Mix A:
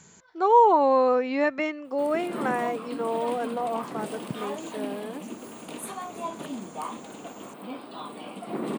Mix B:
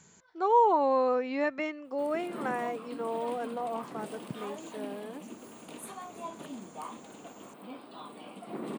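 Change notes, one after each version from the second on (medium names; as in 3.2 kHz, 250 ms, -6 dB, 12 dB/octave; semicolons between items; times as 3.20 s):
speech -5.5 dB; background -7.0 dB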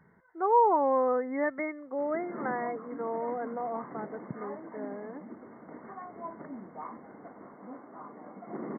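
master: add brick-wall FIR low-pass 2.2 kHz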